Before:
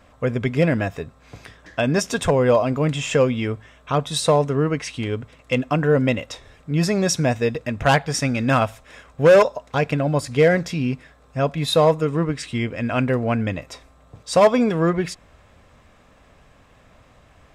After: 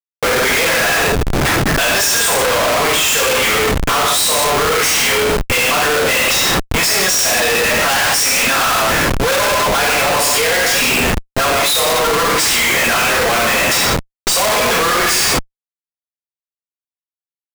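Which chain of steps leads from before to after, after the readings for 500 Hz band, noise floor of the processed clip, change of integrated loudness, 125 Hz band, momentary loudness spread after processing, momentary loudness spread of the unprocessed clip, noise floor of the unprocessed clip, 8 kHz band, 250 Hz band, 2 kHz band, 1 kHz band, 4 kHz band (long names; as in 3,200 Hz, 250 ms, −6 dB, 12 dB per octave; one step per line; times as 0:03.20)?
+2.0 dB, below −85 dBFS, +8.0 dB, −2.0 dB, 3 LU, 11 LU, −53 dBFS, +18.5 dB, −1.5 dB, +14.5 dB, +9.5 dB, +16.5 dB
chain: high-pass filter 980 Hz 12 dB per octave
high-shelf EQ 6,700 Hz +11.5 dB
reverb whose tail is shaped and stops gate 280 ms falling, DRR −6.5 dB
leveller curve on the samples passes 5
comparator with hysteresis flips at −24 dBFS
level −6 dB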